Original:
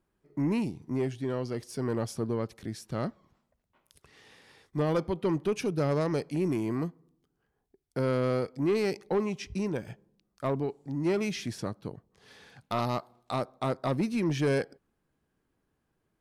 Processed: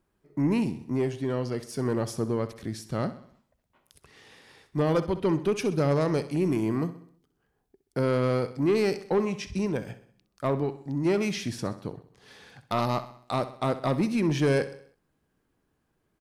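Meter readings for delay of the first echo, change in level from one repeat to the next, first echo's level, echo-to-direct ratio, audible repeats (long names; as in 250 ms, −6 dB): 64 ms, −6.0 dB, −14.0 dB, −13.0 dB, 4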